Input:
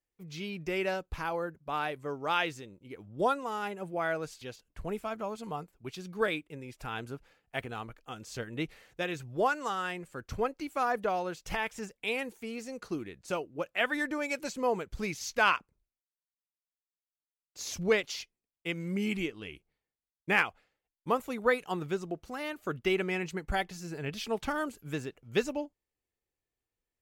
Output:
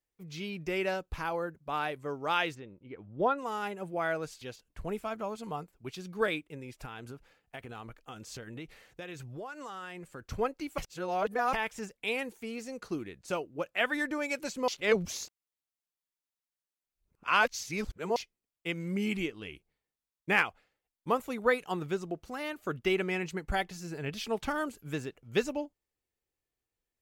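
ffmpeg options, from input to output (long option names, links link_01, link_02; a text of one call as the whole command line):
ffmpeg -i in.wav -filter_complex "[0:a]asplit=3[link_01][link_02][link_03];[link_01]afade=type=out:start_time=2.54:duration=0.02[link_04];[link_02]lowpass=2500,afade=type=in:start_time=2.54:duration=0.02,afade=type=out:start_time=3.37:duration=0.02[link_05];[link_03]afade=type=in:start_time=3.37:duration=0.02[link_06];[link_04][link_05][link_06]amix=inputs=3:normalize=0,asettb=1/sr,asplit=3[link_07][link_08][link_09];[link_07]atrim=end=6.854[link_10];[link_08]atrim=start=6.85:end=10.22,asetpts=PTS-STARTPTS,afade=type=in:duration=0.004:curve=qsin,afade=type=out:start_time=3.366:duration=0.004:curve=qsin,acompressor=threshold=-39dB:ratio=6:attack=3.2:release=140:knee=1:detection=peak[link_11];[link_09]atrim=start=10.216[link_12];[link_10][link_11]acrossfade=duration=0.004:curve1=hsin:curve2=qsin[link_13];[link_13][link_12]acrossfade=duration=0.004:curve1=qsin:curve2=hsin,asplit=5[link_14][link_15][link_16][link_17][link_18];[link_14]atrim=end=10.782[link_19];[link_15]atrim=start=10.778:end=11.532,asetpts=PTS-STARTPTS,areverse[link_20];[link_16]atrim=start=11.528:end=14.682[link_21];[link_17]atrim=start=14.678:end=18.162,asetpts=PTS-STARTPTS,areverse[link_22];[link_18]atrim=start=18.158[link_23];[link_19][link_20]acrossfade=duration=0.004:curve1=hsin:curve2=hsin[link_24];[link_24][link_21]acrossfade=duration=0.004:curve1=hsin:curve2=hsin[link_25];[link_25][link_22]acrossfade=duration=0.004:curve1=hsin:curve2=hsin[link_26];[link_26][link_23]acrossfade=duration=0.004:curve1=hsin:curve2=hsin" out.wav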